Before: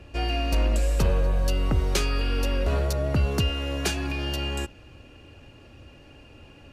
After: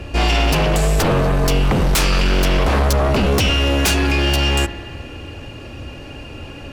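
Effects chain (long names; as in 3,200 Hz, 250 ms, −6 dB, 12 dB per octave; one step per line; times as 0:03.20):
spring reverb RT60 2.2 s, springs 46 ms, chirp 25 ms, DRR 13 dB
sine wavefolder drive 10 dB, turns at −13.5 dBFS
level +1.5 dB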